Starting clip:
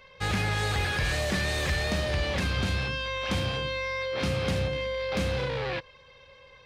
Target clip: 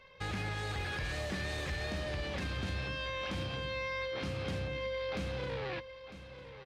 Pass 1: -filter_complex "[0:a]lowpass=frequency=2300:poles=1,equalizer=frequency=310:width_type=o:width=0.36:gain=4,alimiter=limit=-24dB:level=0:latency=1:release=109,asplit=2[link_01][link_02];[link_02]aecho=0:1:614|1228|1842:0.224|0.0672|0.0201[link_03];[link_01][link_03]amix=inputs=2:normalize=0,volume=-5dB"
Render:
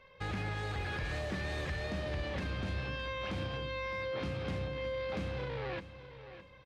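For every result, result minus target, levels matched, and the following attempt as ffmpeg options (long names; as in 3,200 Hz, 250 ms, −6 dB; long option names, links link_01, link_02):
echo 338 ms early; 8,000 Hz band −5.5 dB
-filter_complex "[0:a]lowpass=frequency=2300:poles=1,equalizer=frequency=310:width_type=o:width=0.36:gain=4,alimiter=limit=-24dB:level=0:latency=1:release=109,asplit=2[link_01][link_02];[link_02]aecho=0:1:952|1904|2856:0.224|0.0672|0.0201[link_03];[link_01][link_03]amix=inputs=2:normalize=0,volume=-5dB"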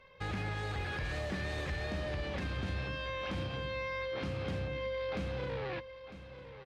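8,000 Hz band −5.5 dB
-filter_complex "[0:a]lowpass=frequency=6400:poles=1,equalizer=frequency=310:width_type=o:width=0.36:gain=4,alimiter=limit=-24dB:level=0:latency=1:release=109,asplit=2[link_01][link_02];[link_02]aecho=0:1:952|1904|2856:0.224|0.0672|0.0201[link_03];[link_01][link_03]amix=inputs=2:normalize=0,volume=-5dB"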